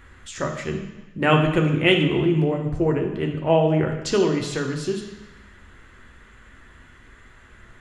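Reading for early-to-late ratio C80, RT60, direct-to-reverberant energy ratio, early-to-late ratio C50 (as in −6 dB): 8.5 dB, 1.0 s, 2.0 dB, 6.0 dB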